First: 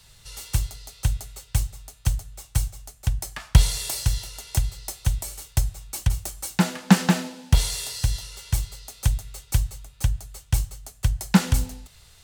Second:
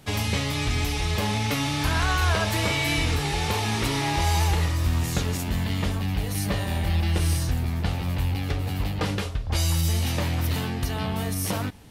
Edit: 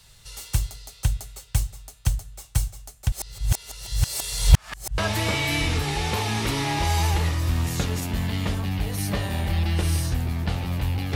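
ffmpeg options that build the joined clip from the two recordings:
-filter_complex "[0:a]apad=whole_dur=11.15,atrim=end=11.15,asplit=2[a][b];[a]atrim=end=3.122[c];[b]atrim=start=3.118:end=4.982,asetpts=PTS-STARTPTS,areverse[d];[1:a]atrim=start=2.348:end=8.52[e];[c][d]acrossfade=d=0.004:c1=hsin:c2=hsin[f];[f][e]acrossfade=d=0.004:c1=hsin:c2=hsin"

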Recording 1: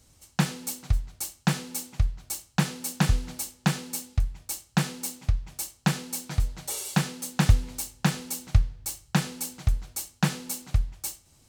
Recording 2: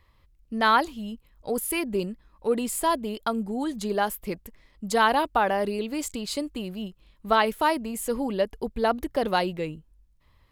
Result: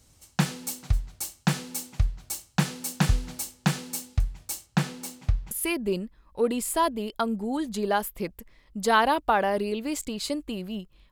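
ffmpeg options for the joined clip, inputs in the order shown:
-filter_complex "[0:a]asettb=1/sr,asplit=3[a][b][c];[a]atrim=end=4.664[d];[b]atrim=start=4.66:end=5.51,asetpts=PTS-STARTPTS,afade=t=in:d=0.004:c=qsin,afade=t=out:st=0.846:d=0.004:c=qsin,highshelf=f=4.4k:g=-6.5[e];[c]atrim=start=5.506[f];[d][e]acrossfade=d=0.004:c1=hsin:c2=qsin[g];[g][f]acrossfade=d=0.004:c1=qsin:c2=hsin,apad=whole_dur=11.11,atrim=end=11.11,atrim=end=5.512[h];[1:a]atrim=start=1.578:end=7.18[i];[h][i]acrossfade=d=0.004:c1=hsin:c2=hsin"

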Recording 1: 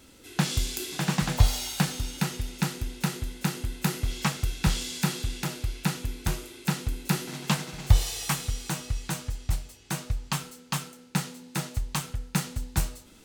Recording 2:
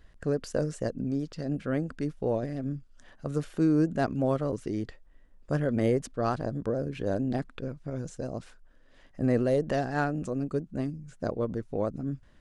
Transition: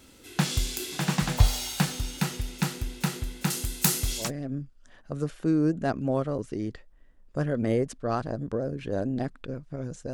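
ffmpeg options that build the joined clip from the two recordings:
-filter_complex "[0:a]asettb=1/sr,asplit=3[a][b][c];[a]atrim=end=3.504[d];[b]atrim=start=3.5:end=4.31,asetpts=PTS-STARTPTS,afade=t=in:d=0.004:c=qsin,afade=t=out:st=0.806:d=0.004:c=qsin,bass=f=250:g=-1,treble=f=4k:g=12[e];[c]atrim=start=4.306[f];[d][e]acrossfade=d=0.004:c1=hsin:c2=qsin[g];[g][f]acrossfade=d=0.004:c1=qsin:c2=hsin,apad=whole_dur=10.13,atrim=end=10.13,atrim=end=4.31,asetpts=PTS-STARTPTS[h];[1:a]atrim=start=2.31:end=8.27,asetpts=PTS-STARTPTS[i];[h][i]acrossfade=d=0.14:c1=tri:c2=tri"

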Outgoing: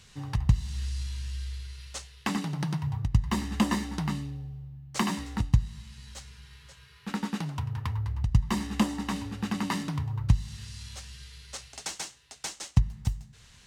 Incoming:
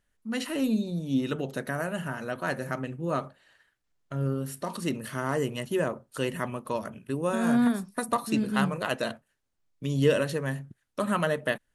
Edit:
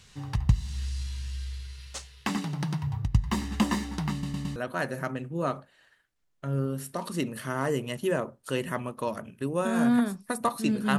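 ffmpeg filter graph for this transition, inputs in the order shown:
-filter_complex "[0:a]apad=whole_dur=10.98,atrim=end=10.98,asplit=4[a][b][c][d];[a]atrim=end=4.232[e];[b]atrim=start=4.118:end=4.232[f];[c]atrim=start=4.118:end=4.232[g];[d]atrim=start=4.118:end=4.232[h];[1:a]atrim=start=2.238:end=8.66[i];[e][f]acrossfade=d=0.004:c1=hsin:c2=hsin[j];[j][g]acrossfade=d=0.004:c1=hsin:c2=hsin[k];[k][h]acrossfade=d=0.004:c1=hsin:c2=hsin[l];[l][i]acrossfade=d=0.004:c1=hsin:c2=hsin"

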